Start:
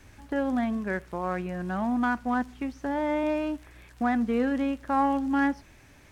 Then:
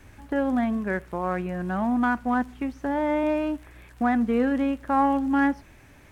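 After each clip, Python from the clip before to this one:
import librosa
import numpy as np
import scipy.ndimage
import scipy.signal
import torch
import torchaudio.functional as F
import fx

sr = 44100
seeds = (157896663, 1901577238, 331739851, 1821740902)

y = fx.peak_eq(x, sr, hz=5200.0, db=-5.5, octaves=1.4)
y = y * librosa.db_to_amplitude(3.0)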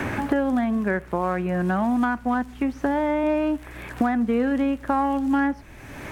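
y = fx.band_squash(x, sr, depth_pct=100)
y = y * librosa.db_to_amplitude(1.0)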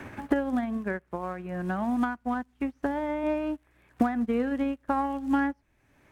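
y = fx.upward_expand(x, sr, threshold_db=-34.0, expansion=2.5)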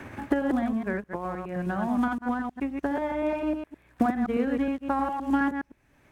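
y = fx.reverse_delay(x, sr, ms=104, wet_db=-4)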